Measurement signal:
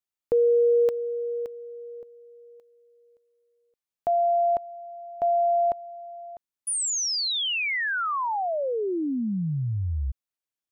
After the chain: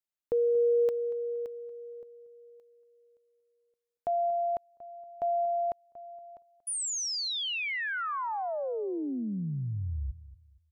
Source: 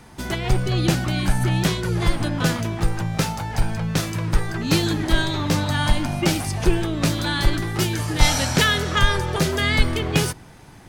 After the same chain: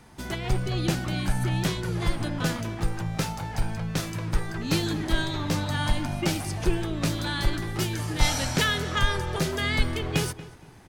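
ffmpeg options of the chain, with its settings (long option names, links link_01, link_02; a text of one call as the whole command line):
ffmpeg -i in.wav -filter_complex "[0:a]asplit=2[link_01][link_02];[link_02]adelay=234,lowpass=frequency=2400:poles=1,volume=-16dB,asplit=2[link_03][link_04];[link_04]adelay=234,lowpass=frequency=2400:poles=1,volume=0.3,asplit=2[link_05][link_06];[link_06]adelay=234,lowpass=frequency=2400:poles=1,volume=0.3[link_07];[link_01][link_03][link_05][link_07]amix=inputs=4:normalize=0,volume=-6dB" out.wav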